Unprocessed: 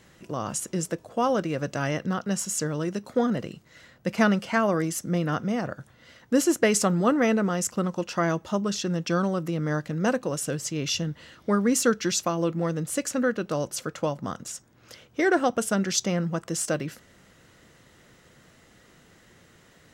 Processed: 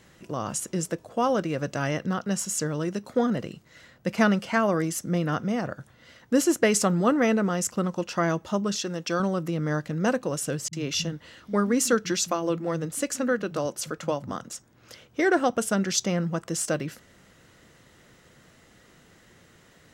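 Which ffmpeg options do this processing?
-filter_complex "[0:a]asettb=1/sr,asplit=3[a][b][c];[a]atrim=end=8.754[d];[b]atrim=start=8.75:end=9.2,asetpts=PTS-STARTPTS,afade=t=in:d=0.004:c=qsin,afade=t=out:st=0.446:d=0.004:c=qsin,bass=f=250:g=-9,treble=f=4k:g=2[e];[c]atrim=start=9.196[f];[d][e]acrossfade=d=0.004:c1=hsin:c2=qsin[g];[g][f]acrossfade=d=0.004:c1=qsin:c2=hsin,asettb=1/sr,asplit=3[h][i][j];[h]atrim=end=10.684[k];[i]atrim=start=10.68:end=14.55,asetpts=PTS-STARTPTS,afade=t=in:d=0.004:c=qsin,afade=t=out:st=3.866:d=0.004:c=qsin,acrossover=split=160[l][m];[m]adelay=50[n];[l][n]amix=inputs=2:normalize=0,atrim=end_sample=170667[o];[j]atrim=start=14.546[p];[k][o]acrossfade=d=0.004:c1=hsin:c2=qsin[q];[q][p]acrossfade=d=0.004:c1=qsin:c2=hsin"

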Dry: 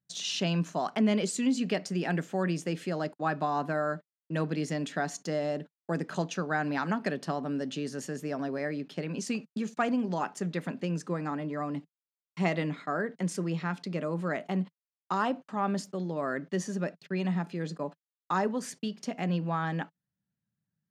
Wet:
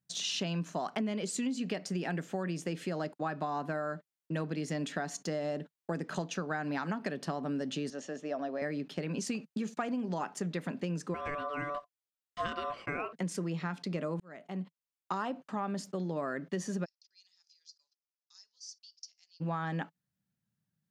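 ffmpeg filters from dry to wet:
-filter_complex "[0:a]asettb=1/sr,asplit=3[a][b][c];[a]atrim=end=7.904[d];[b]atrim=start=7.9:end=8.62,asetpts=PTS-STARTPTS,afade=t=in:d=0.004:c=qsin,afade=t=out:st=0.716:d=0.004:c=qsin,highpass=330,equalizer=f=400:t=q:w=4:g=-6,equalizer=f=640:t=q:w=4:g=5,equalizer=f=960:t=q:w=4:g=-5,equalizer=f=1.5k:t=q:w=4:g=-5,equalizer=f=2.2k:t=q:w=4:g=-6,equalizer=f=4.7k:t=q:w=4:g=-9,lowpass=f=5.9k:w=0.5412,lowpass=f=5.9k:w=1.3066[e];[c]atrim=start=8.616[f];[d][e]acrossfade=d=0.004:c1=hsin:c2=qsin[g];[g][f]acrossfade=d=0.004:c1=qsin:c2=hsin,asettb=1/sr,asplit=3[h][i][j];[h]atrim=end=11.144[k];[i]atrim=start=11.14:end=13.13,asetpts=PTS-STARTPTS,afade=t=in:d=0.004:c=qsin,afade=t=out:st=1.986:d=0.004:c=qsin,aeval=exprs='val(0)*sin(2*PI*870*n/s)':c=same[l];[j]atrim=start=13.126[m];[k][l]acrossfade=d=0.004:c1=hsin:c2=qsin[n];[n][m]acrossfade=d=0.004:c1=qsin:c2=hsin,asplit=3[o][p][q];[o]afade=t=out:st=16.84:d=0.02[r];[p]asuperpass=centerf=5300:order=4:qfactor=3.8,afade=t=in:st=16.84:d=0.02,afade=t=out:st=19.4:d=0.02[s];[q]afade=t=in:st=19.4:d=0.02[t];[r][s][t]amix=inputs=3:normalize=0,asplit=2[u][v];[u]atrim=end=14.2,asetpts=PTS-STARTPTS,afade=t=out:st=14.196:d=0.004:c=hsin[w];[v]atrim=start=14.2,asetpts=PTS-STARTPTS,afade=t=in:d=1.01[x];[w][x]concat=n=2:v=0:a=1,acompressor=threshold=-32dB:ratio=6,volume=1dB"

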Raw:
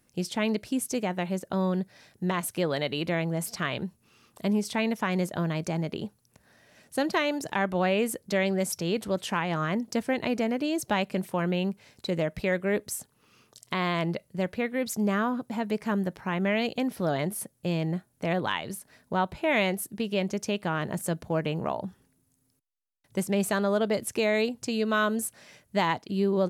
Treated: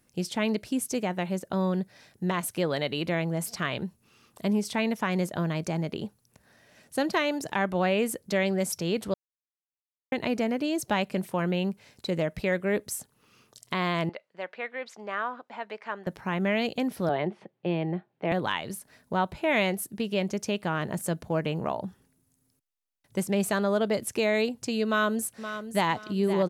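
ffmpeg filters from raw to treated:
-filter_complex "[0:a]asettb=1/sr,asplit=3[a][b][c];[a]atrim=end=14.094[d];[b]atrim=start=14.09:end=16.07,asetpts=PTS-STARTPTS,afade=t=in:d=0.004:c=qsin,afade=t=out:st=1.976:d=0.004:c=qsin,highpass=700,lowpass=2.9k[e];[c]atrim=start=16.066[f];[d][e]acrossfade=d=0.004:c1=hsin:c2=qsin[g];[g][f]acrossfade=d=0.004:c1=qsin:c2=hsin,asettb=1/sr,asplit=3[h][i][j];[h]atrim=end=17.094[k];[i]atrim=start=17.09:end=18.32,asetpts=PTS-STARTPTS,afade=t=in:d=0.004:c=qsin,afade=t=out:st=1.226:d=0.004:c=qsin,highpass=f=150:w=0.5412,highpass=f=150:w=1.3066,equalizer=f=250:t=q:w=4:g=-9,equalizer=f=360:t=q:w=4:g=6,equalizer=f=800:t=q:w=4:g=5,equalizer=f=1.4k:t=q:w=4:g=-3,lowpass=f=3.2k:w=0.5412,lowpass=f=3.2k:w=1.3066[l];[j]atrim=start=18.316[m];[k][l]acrossfade=d=0.004:c1=hsin:c2=qsin[n];[n][m]acrossfade=d=0.004:c1=qsin:c2=hsin,asplit=2[o][p];[p]afade=t=in:st=24.86:d=0.01,afade=t=out:st=25.9:d=0.01,aecho=0:1:520|1040|1560:0.298538|0.0895615|0.0268684[q];[o][q]amix=inputs=2:normalize=0,asplit=3[r][s][t];[r]atrim=end=9.14,asetpts=PTS-STARTPTS,afade=t=out:st=9.136:d=0.004:c=hsin[u];[s]atrim=start=9.14:end=10.12,asetpts=PTS-STARTPTS,volume=0[v];[t]atrim=start=10.12,asetpts=PTS-STARTPTS,afade=t=in:d=0.004:c=hsin[w];[u][v][w]concat=n=3:v=0:a=1"

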